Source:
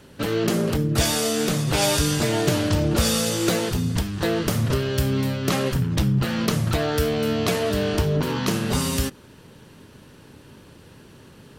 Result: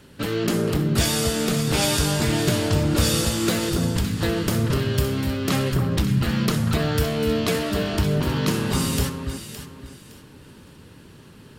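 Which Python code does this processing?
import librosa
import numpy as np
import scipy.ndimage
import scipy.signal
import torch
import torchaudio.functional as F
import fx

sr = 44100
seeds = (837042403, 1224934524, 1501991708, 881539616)

y = fx.peak_eq(x, sr, hz=640.0, db=-4.0, octaves=1.3)
y = fx.notch(y, sr, hz=6000.0, q=19.0)
y = fx.echo_alternate(y, sr, ms=282, hz=1500.0, feedback_pct=52, wet_db=-4.5)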